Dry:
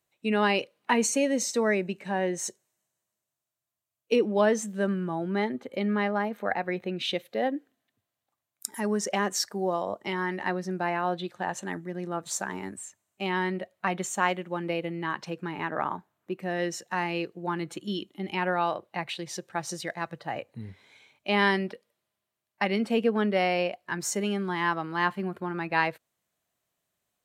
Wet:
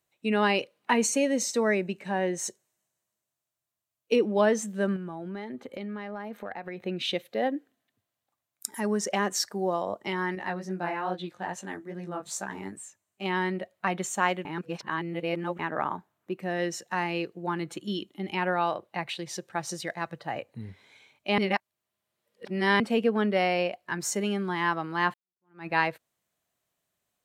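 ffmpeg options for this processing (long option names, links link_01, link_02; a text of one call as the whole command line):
ffmpeg -i in.wav -filter_complex "[0:a]asettb=1/sr,asplit=3[link_01][link_02][link_03];[link_01]atrim=end=4.964[link_04];[link_02]atrim=start=4.96:end=6.82,asetpts=PTS-STARTPTS,afade=type=in:duration=0.004:curve=qsin,afade=type=out:start_time=1.856:duration=0.004:curve=qsin,acompressor=threshold=-33dB:ratio=6:attack=3.2:release=140:knee=1:detection=peak[link_05];[link_03]atrim=start=6.816[link_06];[link_04][link_05]acrossfade=duration=0.004:curve1=hsin:curve2=qsin[link_07];[link_07][link_06]acrossfade=duration=0.004:curve1=qsin:curve2=hsin,asettb=1/sr,asplit=3[link_08][link_09][link_10];[link_08]atrim=end=10.354[link_11];[link_09]atrim=start=10.35:end=13.26,asetpts=PTS-STARTPTS,afade=type=in:duration=0.004:curve=qsin,afade=type=out:start_time=2.906:duration=0.004:curve=qsin,flanger=delay=15.5:depth=5.7:speed=2.4[link_12];[link_10]atrim=start=13.256[link_13];[link_11][link_12]acrossfade=duration=0.004:curve1=hsin:curve2=qsin[link_14];[link_14][link_13]acrossfade=duration=0.004:curve1=qsin:curve2=hsin,asplit=6[link_15][link_16][link_17][link_18][link_19][link_20];[link_15]atrim=end=14.452[link_21];[link_16]atrim=start=14.448:end=15.592,asetpts=PTS-STARTPTS,areverse[link_22];[link_17]atrim=start=15.588:end=21.382[link_23];[link_18]atrim=start=21.378:end=22.802,asetpts=PTS-STARTPTS,areverse[link_24];[link_19]atrim=start=22.798:end=25.14,asetpts=PTS-STARTPTS,afade=type=out:start_time=2.338:duration=0.004:curve=hsin[link_25];[link_20]atrim=start=25.14,asetpts=PTS-STARTPTS,afade=type=in:duration=0.53:curve=exp[link_26];[link_21][link_22]acrossfade=duration=0.004:curve1=hsin:curve2=hsin[link_27];[link_27][link_23]acrossfade=duration=0.004:curve1=hsin:curve2=hsin[link_28];[link_28][link_24]acrossfade=duration=0.004:curve1=hsin:curve2=hsin[link_29];[link_25][link_26]concat=n=2:v=0:a=1[link_30];[link_29][link_30]acrossfade=duration=0.004:curve1=hsin:curve2=hsin" out.wav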